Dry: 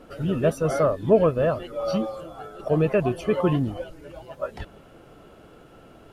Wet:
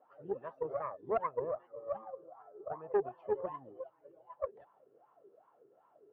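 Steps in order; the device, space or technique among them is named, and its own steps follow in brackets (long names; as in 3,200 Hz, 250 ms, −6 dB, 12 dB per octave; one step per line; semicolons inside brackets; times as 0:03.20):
0:01.22–0:02.90: low-pass filter 2,600 Hz → 1,500 Hz 12 dB per octave
wah-wah guitar rig (LFO wah 2.6 Hz 390–1,000 Hz, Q 13; tube saturation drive 23 dB, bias 0.65; loudspeaker in its box 86–4,300 Hz, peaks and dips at 130 Hz +7 dB, 1,100 Hz +5 dB, 1,800 Hz +6 dB)
level +1 dB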